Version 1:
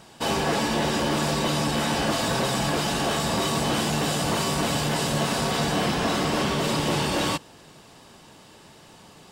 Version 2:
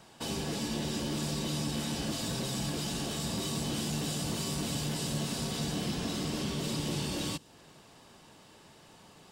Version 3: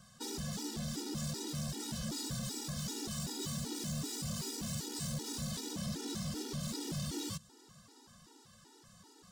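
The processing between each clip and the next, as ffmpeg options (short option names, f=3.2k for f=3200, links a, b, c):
-filter_complex "[0:a]acrossover=split=380|3000[a][b][c];[b]acompressor=threshold=-38dB:ratio=6[d];[a][d][c]amix=inputs=3:normalize=0,volume=-6.5dB"
-af "equalizer=f=630:t=o:w=0.67:g=-12,equalizer=f=2.5k:t=o:w=0.67:g=-11,equalizer=f=6.3k:t=o:w=0.67:g=4,volume=34.5dB,asoftclip=hard,volume=-34.5dB,afftfilt=real='re*gt(sin(2*PI*2.6*pts/sr)*(1-2*mod(floor(b*sr/1024/250),2)),0)':imag='im*gt(sin(2*PI*2.6*pts/sr)*(1-2*mod(floor(b*sr/1024/250),2)),0)':win_size=1024:overlap=0.75,volume=1dB"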